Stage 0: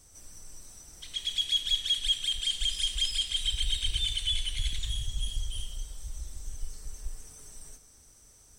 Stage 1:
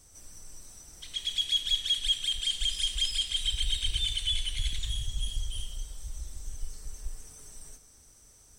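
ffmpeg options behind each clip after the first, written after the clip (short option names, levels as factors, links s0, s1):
-af anull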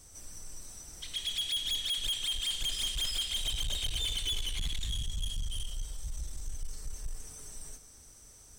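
-af "asoftclip=type=tanh:threshold=0.0266,volume=1.33"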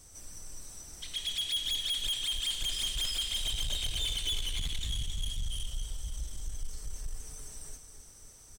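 -af "aecho=1:1:269|538|807|1076|1345|1614|1883:0.251|0.148|0.0874|0.0516|0.0304|0.018|0.0106"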